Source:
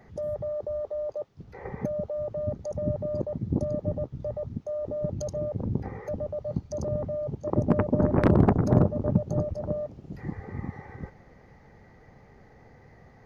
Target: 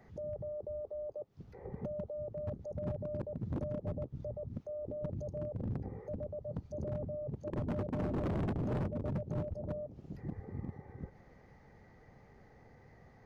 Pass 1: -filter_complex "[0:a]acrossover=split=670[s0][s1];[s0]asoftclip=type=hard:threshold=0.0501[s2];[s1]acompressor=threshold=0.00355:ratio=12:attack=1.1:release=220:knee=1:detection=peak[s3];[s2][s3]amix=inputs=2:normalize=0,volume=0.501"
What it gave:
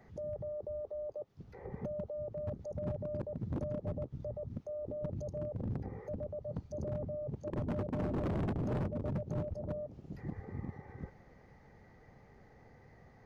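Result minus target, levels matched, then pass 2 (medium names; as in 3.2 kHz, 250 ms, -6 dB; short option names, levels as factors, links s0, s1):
compression: peak gain reduction -5.5 dB
-filter_complex "[0:a]acrossover=split=670[s0][s1];[s0]asoftclip=type=hard:threshold=0.0501[s2];[s1]acompressor=threshold=0.00178:ratio=12:attack=1.1:release=220:knee=1:detection=peak[s3];[s2][s3]amix=inputs=2:normalize=0,volume=0.501"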